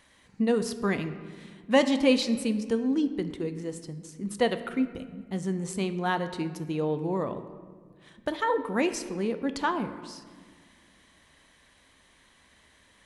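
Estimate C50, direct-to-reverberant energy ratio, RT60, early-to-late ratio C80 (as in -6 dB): 11.5 dB, 9.5 dB, 1.7 s, 13.0 dB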